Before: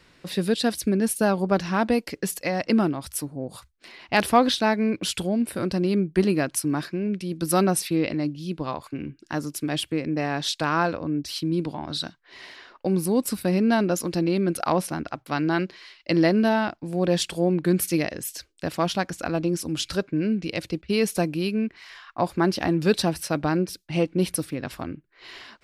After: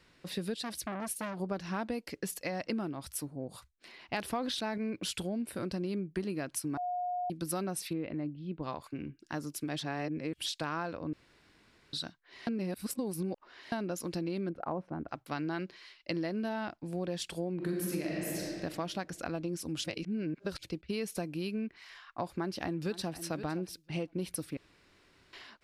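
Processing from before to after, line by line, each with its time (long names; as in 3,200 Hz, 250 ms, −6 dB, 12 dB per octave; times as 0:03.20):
0:00.58–0:01.40: saturating transformer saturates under 1,800 Hz
0:04.25–0:04.78: level that may fall only so fast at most 44 dB per second
0:06.77–0:07.30: beep over 718 Hz −23 dBFS
0:07.93–0:08.63: high-frequency loss of the air 450 metres
0:09.79–0:10.46: reverse
0:11.13–0:11.93: fill with room tone
0:12.47–0:13.72: reverse
0:14.49–0:15.09: low-pass filter 1,000 Hz
0:17.55–0:18.52: thrown reverb, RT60 1.9 s, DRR −3.5 dB
0:19.84–0:20.63: reverse
0:22.36–0:23.16: delay throw 510 ms, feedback 10%, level −15.5 dB
0:24.57–0:25.33: fill with room tone
whole clip: downward compressor, threshold −24 dBFS; level −7.5 dB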